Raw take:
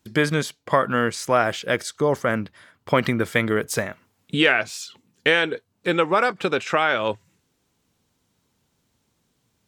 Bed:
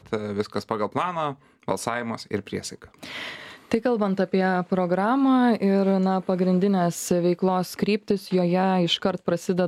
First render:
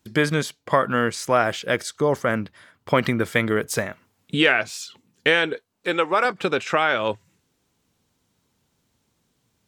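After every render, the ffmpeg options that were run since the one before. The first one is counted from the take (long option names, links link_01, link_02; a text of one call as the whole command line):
ffmpeg -i in.wav -filter_complex "[0:a]asettb=1/sr,asplit=3[link_01][link_02][link_03];[link_01]atrim=end=5.534[link_04];[link_02]atrim=start=5.53:end=6.25,asetpts=PTS-STARTPTS,afade=type=in:duration=0.004:curve=qsin,afade=type=out:start_time=0.716:duration=0.004:curve=qsin,equalizer=frequency=100:width=0.58:gain=-12.5[link_05];[link_03]atrim=start=6.246[link_06];[link_04][link_05]acrossfade=duration=0.004:curve1=hsin:curve2=qsin[link_07];[link_07][link_06]acrossfade=duration=0.004:curve1=qsin:curve2=hsin" out.wav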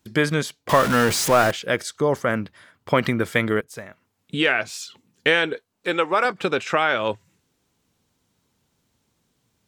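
ffmpeg -i in.wav -filter_complex "[0:a]asettb=1/sr,asplit=3[link_01][link_02][link_03];[link_01]atrim=end=0.694[link_04];[link_02]atrim=start=0.69:end=1.51,asetpts=PTS-STARTPTS,afade=type=in:duration=0.004:curve=qsin,afade=type=out:start_time=0.816:duration=0.004:curve=qsin,aeval=exprs='val(0)+0.5*0.1*sgn(val(0))':channel_layout=same[link_05];[link_03]atrim=start=1.506[link_06];[link_04][link_05]acrossfade=duration=0.004:curve1=hsin:curve2=qsin[link_07];[link_07][link_06]acrossfade=duration=0.004:curve1=qsin:curve2=hsin,asplit=2[link_08][link_09];[link_08]atrim=end=3.61,asetpts=PTS-STARTPTS,afade=type=out:start_time=3.606:duration=0.004:curve=hsin:silence=0.112202[link_10];[link_09]atrim=start=3.61,asetpts=PTS-STARTPTS,afade=type=in:duration=1.15:silence=0.112202[link_11];[link_10][link_11]concat=n=2:v=0:a=1" out.wav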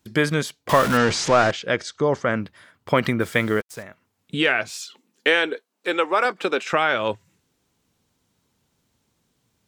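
ffmpeg -i in.wav -filter_complex "[0:a]asettb=1/sr,asplit=3[link_01][link_02][link_03];[link_01]atrim=end=0.974[link_04];[link_02]atrim=start=0.97:end=2.4,asetpts=PTS-STARTPTS,afade=type=in:duration=0.004:curve=qsin,afade=type=out:start_time=1.426:duration=0.004:curve=qsin,lowpass=frequency=6800:width=0.5412,lowpass=frequency=6800:width=1.3066[link_05];[link_03]atrim=start=2.396[link_06];[link_04][link_05]acrossfade=duration=0.004:curve1=hsin:curve2=qsin[link_07];[link_07][link_06]acrossfade=duration=0.004:curve1=qsin:curve2=hsin,asettb=1/sr,asplit=3[link_08][link_09][link_10];[link_08]atrim=end=3.214[link_11];[link_09]atrim=start=3.21:end=3.83,asetpts=PTS-STARTPTS,afade=type=in:duration=0.004:curve=qsin,afade=type=out:start_time=0.616:duration=0.004:curve=qsin,acrusher=bits=6:mix=0:aa=0.5[link_12];[link_10]atrim=start=3.826[link_13];[link_11][link_12]acrossfade=duration=0.004:curve1=hsin:curve2=qsin[link_14];[link_14][link_13]acrossfade=duration=0.004:curve1=qsin:curve2=hsin,asettb=1/sr,asplit=3[link_15][link_16][link_17];[link_15]atrim=end=4.804[link_18];[link_16]atrim=start=4.8:end=6.73,asetpts=PTS-STARTPTS,afade=type=in:duration=0.004:curve=qsin,afade=type=out:start_time=1.926:duration=0.004:curve=qsin,highpass=frequency=230:width=0.5412,highpass=frequency=230:width=1.3066[link_19];[link_17]atrim=start=6.726[link_20];[link_18][link_19]acrossfade=duration=0.004:curve1=hsin:curve2=qsin[link_21];[link_21][link_20]acrossfade=duration=0.004:curve1=qsin:curve2=hsin" out.wav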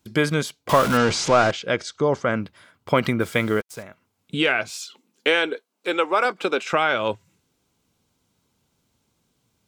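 ffmpeg -i in.wav -af "bandreject=frequency=1800:width=8.9" out.wav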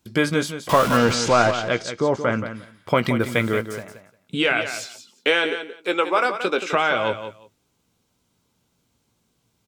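ffmpeg -i in.wav -filter_complex "[0:a]asplit=2[link_01][link_02];[link_02]adelay=17,volume=-11dB[link_03];[link_01][link_03]amix=inputs=2:normalize=0,asplit=2[link_04][link_05];[link_05]aecho=0:1:176|352:0.316|0.0506[link_06];[link_04][link_06]amix=inputs=2:normalize=0" out.wav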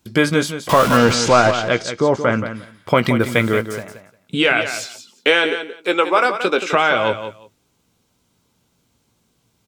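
ffmpeg -i in.wav -af "volume=4.5dB,alimiter=limit=-1dB:level=0:latency=1" out.wav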